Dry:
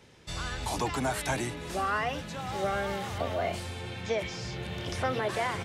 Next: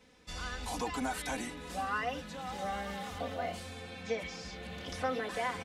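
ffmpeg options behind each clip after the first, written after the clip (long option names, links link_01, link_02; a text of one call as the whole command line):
ffmpeg -i in.wav -af "aecho=1:1:4:0.98,volume=-8dB" out.wav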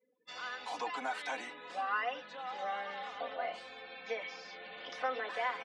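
ffmpeg -i in.wav -af "afftdn=noise_reduction=35:noise_floor=-54,highpass=580,lowpass=3900,volume=1dB" out.wav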